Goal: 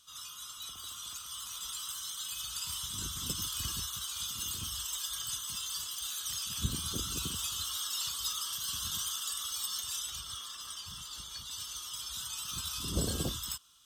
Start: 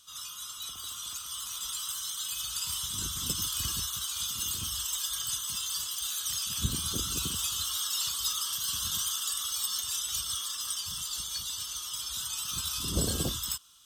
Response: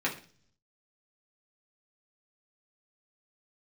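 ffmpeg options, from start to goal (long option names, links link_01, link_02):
-af "asetnsamples=nb_out_samples=441:pad=0,asendcmd='10.1 highshelf g -11;11.51 highshelf g -3.5',highshelf=frequency=4600:gain=-3,volume=-2.5dB"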